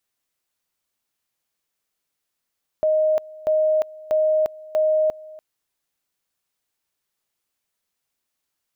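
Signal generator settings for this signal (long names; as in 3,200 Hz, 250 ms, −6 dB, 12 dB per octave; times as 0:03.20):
tone at two levels in turn 622 Hz −15.5 dBFS, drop 21.5 dB, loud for 0.35 s, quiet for 0.29 s, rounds 4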